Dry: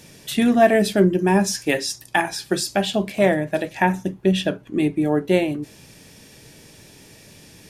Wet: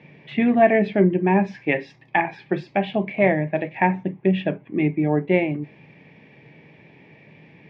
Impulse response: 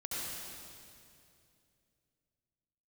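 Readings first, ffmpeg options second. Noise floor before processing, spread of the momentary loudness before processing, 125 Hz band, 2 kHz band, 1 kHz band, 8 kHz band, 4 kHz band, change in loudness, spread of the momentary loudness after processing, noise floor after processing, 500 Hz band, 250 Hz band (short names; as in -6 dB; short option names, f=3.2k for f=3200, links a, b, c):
-48 dBFS, 9 LU, +0.5 dB, -0.5 dB, 0.0 dB, under -35 dB, -13.0 dB, -1.0 dB, 9 LU, -52 dBFS, -1.0 dB, -1.0 dB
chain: -af "highpass=140,equalizer=f=150:t=q:w=4:g=8,equalizer=f=830:t=q:w=4:g=3,equalizer=f=1.4k:t=q:w=4:g=-9,equalizer=f=2.2k:t=q:w=4:g=9,lowpass=f=2.5k:w=0.5412,lowpass=f=2.5k:w=1.3066,volume=-1.5dB"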